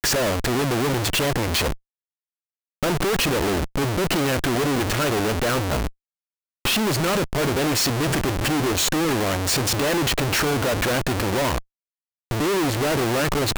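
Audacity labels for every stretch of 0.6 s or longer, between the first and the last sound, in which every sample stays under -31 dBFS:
1.740000	2.830000	silence
5.890000	6.650000	silence
11.590000	12.310000	silence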